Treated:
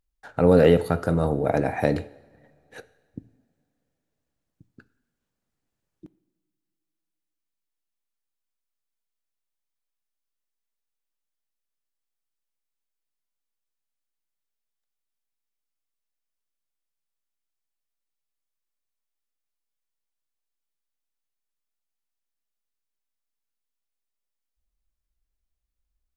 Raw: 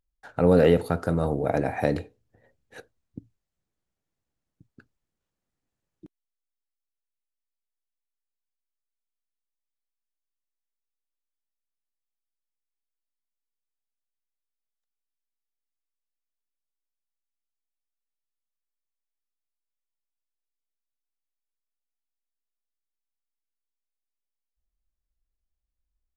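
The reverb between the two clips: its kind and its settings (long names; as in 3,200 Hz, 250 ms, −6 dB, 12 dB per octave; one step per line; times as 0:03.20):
coupled-rooms reverb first 0.91 s, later 3.5 s, from −19 dB, DRR 16.5 dB
level +2 dB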